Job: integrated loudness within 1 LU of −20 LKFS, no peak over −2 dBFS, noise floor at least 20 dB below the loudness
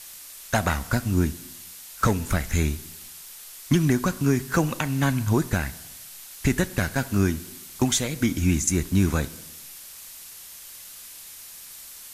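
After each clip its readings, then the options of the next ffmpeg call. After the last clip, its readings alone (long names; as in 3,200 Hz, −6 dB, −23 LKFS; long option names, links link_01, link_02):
background noise floor −43 dBFS; target noise floor −45 dBFS; integrated loudness −24.5 LKFS; sample peak −9.0 dBFS; target loudness −20.0 LKFS
→ -af "afftdn=noise_reduction=6:noise_floor=-43"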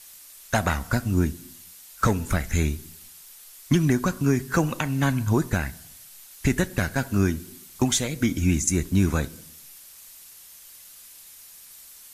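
background noise floor −47 dBFS; integrated loudness −24.5 LKFS; sample peak −9.0 dBFS; target loudness −20.0 LKFS
→ -af "volume=4.5dB"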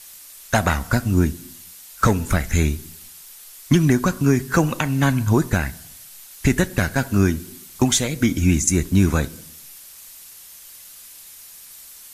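integrated loudness −20.0 LKFS; sample peak −4.5 dBFS; background noise floor −43 dBFS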